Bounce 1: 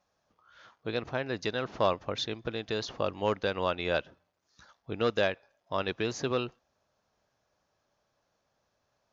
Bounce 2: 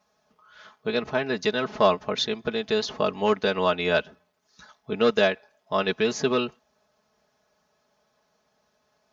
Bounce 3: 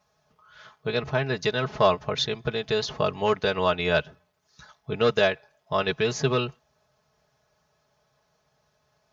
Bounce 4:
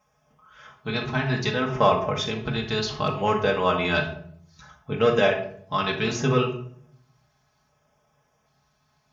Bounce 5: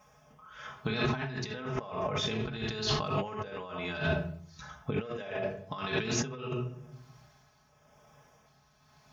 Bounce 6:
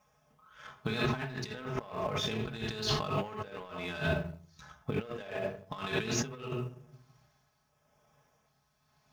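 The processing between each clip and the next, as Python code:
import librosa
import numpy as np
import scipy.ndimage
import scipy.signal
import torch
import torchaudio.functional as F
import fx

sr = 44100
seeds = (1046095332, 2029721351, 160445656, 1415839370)

y1 = scipy.signal.sosfilt(scipy.signal.butter(2, 70.0, 'highpass', fs=sr, output='sos'), x)
y1 = y1 + 0.76 * np.pad(y1, (int(4.7 * sr / 1000.0), 0))[:len(y1)]
y1 = y1 * 10.0 ** (5.0 / 20.0)
y2 = fx.low_shelf_res(y1, sr, hz=170.0, db=6.0, q=3.0)
y3 = fx.filter_lfo_notch(y2, sr, shape='square', hz=0.65, low_hz=520.0, high_hz=4200.0, q=2.1)
y3 = fx.room_shoebox(y3, sr, seeds[0], volume_m3=950.0, walls='furnished', distance_m=2.1)
y4 = fx.over_compress(y3, sr, threshold_db=-33.0, ratio=-1.0)
y4 = y4 * (1.0 - 0.5 / 2.0 + 0.5 / 2.0 * np.cos(2.0 * np.pi * 0.98 * (np.arange(len(y4)) / sr)))
y5 = fx.law_mismatch(y4, sr, coded='A')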